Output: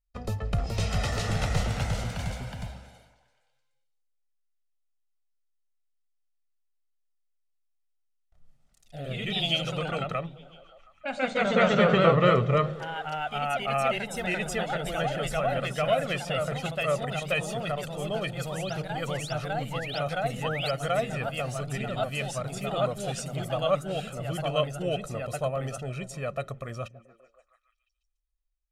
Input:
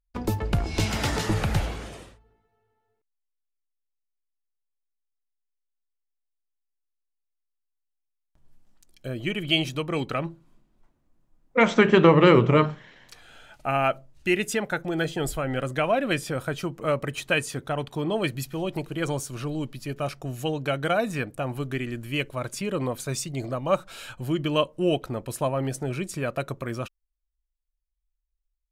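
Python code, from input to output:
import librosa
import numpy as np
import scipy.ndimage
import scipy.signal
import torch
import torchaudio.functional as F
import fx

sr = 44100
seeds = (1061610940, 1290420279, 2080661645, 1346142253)

y = scipy.signal.sosfilt(scipy.signal.butter(2, 10000.0, 'lowpass', fs=sr, output='sos'), x)
y = y + 0.71 * np.pad(y, (int(1.6 * sr / 1000.0), 0))[:len(y)]
y = fx.echo_stepped(y, sr, ms=144, hz=150.0, octaves=0.7, feedback_pct=70, wet_db=-12.0)
y = fx.spec_paint(y, sr, seeds[0], shape='rise', start_s=20.42, length_s=0.29, low_hz=790.0, high_hz=5300.0, level_db=-29.0)
y = fx.echo_pitch(y, sr, ms=440, semitones=1, count=3, db_per_echo=-3.0)
y = y * 10.0 ** (-6.5 / 20.0)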